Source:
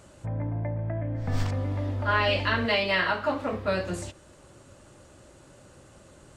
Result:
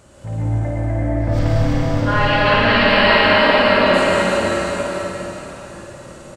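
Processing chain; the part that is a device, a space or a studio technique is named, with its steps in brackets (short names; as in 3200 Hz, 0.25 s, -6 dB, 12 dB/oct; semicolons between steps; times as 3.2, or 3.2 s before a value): 1.39–2.79 LPF 5200 Hz 12 dB/oct; tunnel (flutter echo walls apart 9.4 m, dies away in 0.67 s; reverb RT60 3.9 s, pre-delay 0.103 s, DRR -5.5 dB); bouncing-ball echo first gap 0.34 s, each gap 0.8×, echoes 5; gain +3 dB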